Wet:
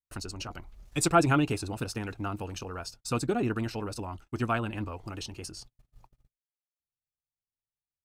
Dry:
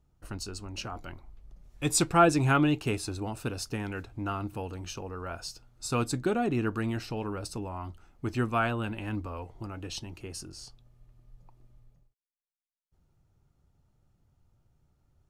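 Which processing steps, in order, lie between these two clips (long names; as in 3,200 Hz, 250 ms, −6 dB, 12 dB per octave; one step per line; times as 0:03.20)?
noise gate −52 dBFS, range −38 dB
tempo change 1.9×
one half of a high-frequency compander encoder only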